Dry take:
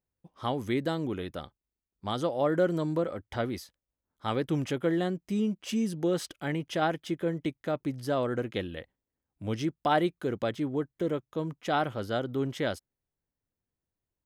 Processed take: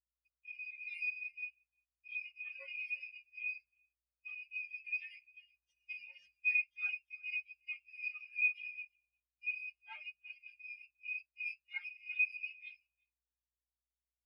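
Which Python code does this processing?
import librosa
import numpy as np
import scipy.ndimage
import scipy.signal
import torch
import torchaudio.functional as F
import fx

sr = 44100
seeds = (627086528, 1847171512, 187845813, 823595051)

p1 = fx.rattle_buzz(x, sr, strikes_db=-46.0, level_db=-19.0)
p2 = np.maximum(p1, 0.0)
p3 = scipy.signal.sosfilt(scipy.signal.butter(2, 690.0, 'highpass', fs=sr, output='sos'), p2)
p4 = np.diff(p3, prepend=0.0)
p5 = p4 + fx.echo_feedback(p4, sr, ms=351, feedback_pct=41, wet_db=-8.0, dry=0)
p6 = np.repeat(p5[::3], 3)[:len(p5)]
p7 = fx.comb(p6, sr, ms=4.9, depth=0.43, at=(8.43, 9.56))
p8 = fx.rev_fdn(p7, sr, rt60_s=0.45, lf_ratio=1.25, hf_ratio=0.95, size_ms=33.0, drr_db=-3.5)
p9 = fx.add_hum(p8, sr, base_hz=60, snr_db=16)
p10 = fx.dynamic_eq(p9, sr, hz=2100.0, q=2.2, threshold_db=-50.0, ratio=4.0, max_db=4)
p11 = fx.spectral_expand(p10, sr, expansion=4.0)
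y = p11 * 10.0 ** (-1.5 / 20.0)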